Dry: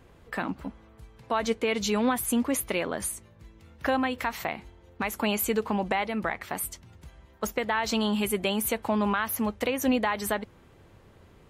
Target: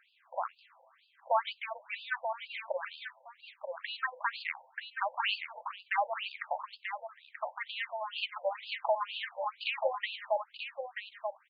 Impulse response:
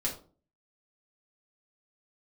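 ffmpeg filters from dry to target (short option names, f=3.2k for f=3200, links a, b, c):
-af "aecho=1:1:933:0.473,afftfilt=real='re*between(b*sr/1024,680*pow(3600/680,0.5+0.5*sin(2*PI*2.1*pts/sr))/1.41,680*pow(3600/680,0.5+0.5*sin(2*PI*2.1*pts/sr))*1.41)':imag='im*between(b*sr/1024,680*pow(3600/680,0.5+0.5*sin(2*PI*2.1*pts/sr))/1.41,680*pow(3600/680,0.5+0.5*sin(2*PI*2.1*pts/sr))*1.41)':win_size=1024:overlap=0.75,volume=1.5dB"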